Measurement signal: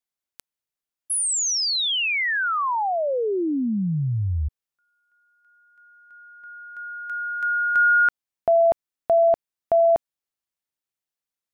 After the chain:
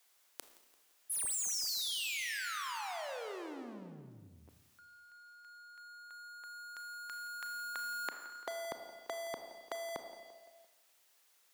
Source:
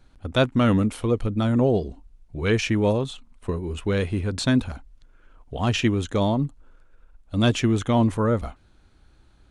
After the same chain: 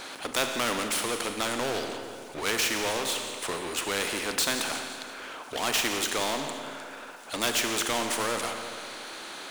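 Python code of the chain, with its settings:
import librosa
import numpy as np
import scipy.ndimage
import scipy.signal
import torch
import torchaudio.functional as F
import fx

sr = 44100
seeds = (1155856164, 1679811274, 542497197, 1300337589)

p1 = scipy.signal.sosfilt(scipy.signal.bessel(4, 510.0, 'highpass', norm='mag', fs=sr, output='sos'), x)
p2 = fx.power_curve(p1, sr, exponent=0.7)
p3 = p2 + fx.echo_feedback(p2, sr, ms=171, feedback_pct=47, wet_db=-20, dry=0)
p4 = fx.rev_schroeder(p3, sr, rt60_s=1.2, comb_ms=26, drr_db=9.5)
p5 = fx.spectral_comp(p4, sr, ratio=2.0)
y = p5 * 10.0 ** (-4.5 / 20.0)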